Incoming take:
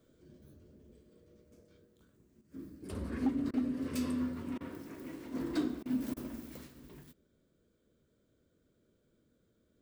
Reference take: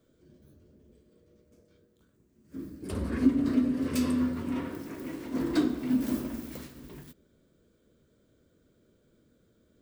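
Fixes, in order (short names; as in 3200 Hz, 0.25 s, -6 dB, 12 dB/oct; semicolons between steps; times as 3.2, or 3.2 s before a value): clip repair -24.5 dBFS; interpolate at 3.51/4.58/5.83/6.14, 25 ms; gain 0 dB, from 2.41 s +7 dB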